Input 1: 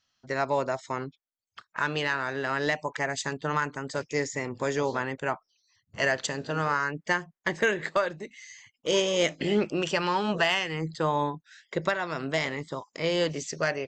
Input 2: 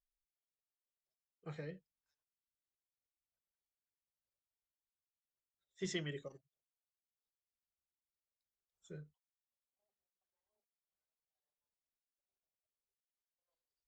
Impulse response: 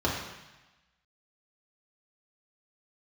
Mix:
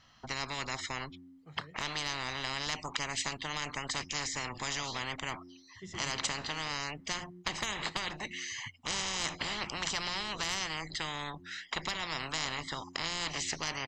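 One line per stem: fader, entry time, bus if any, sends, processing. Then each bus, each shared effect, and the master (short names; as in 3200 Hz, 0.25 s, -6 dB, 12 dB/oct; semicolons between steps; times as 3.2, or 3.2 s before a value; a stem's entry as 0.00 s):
-1.0 dB, 0.00 s, no send, LPF 1500 Hz 6 dB/oct; de-hum 89.16 Hz, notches 4; spectral compressor 10:1
-6.5 dB, 0.00 s, no send, dry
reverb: off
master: comb 1 ms, depth 33%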